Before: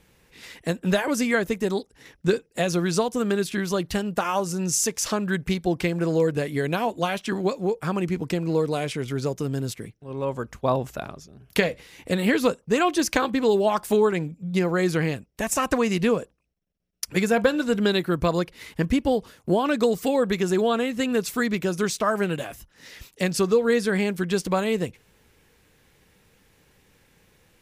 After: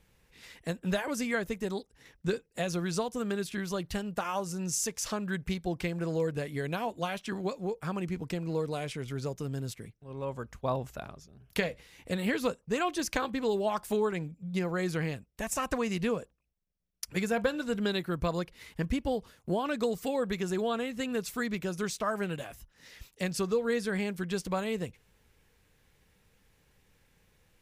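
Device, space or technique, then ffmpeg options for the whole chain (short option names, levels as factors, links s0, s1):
low shelf boost with a cut just above: -af "lowshelf=f=66:g=8,equalizer=f=320:t=o:w=0.86:g=-3,volume=0.398"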